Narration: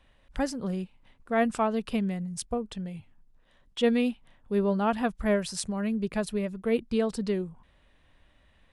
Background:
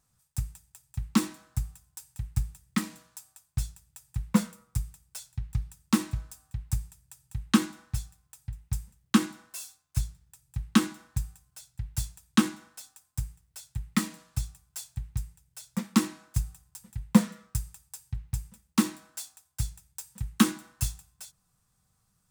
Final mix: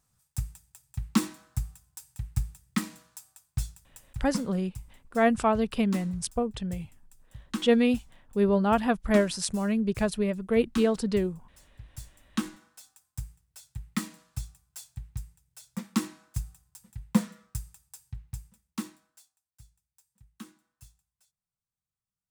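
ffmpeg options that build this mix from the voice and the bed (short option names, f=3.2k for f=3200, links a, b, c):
-filter_complex "[0:a]adelay=3850,volume=2.5dB[a];[1:a]volume=6.5dB,afade=t=out:st=3.86:d=0.55:silence=0.281838,afade=t=in:st=12.04:d=0.91:silence=0.446684,afade=t=out:st=18.01:d=1.32:silence=0.105925[b];[a][b]amix=inputs=2:normalize=0"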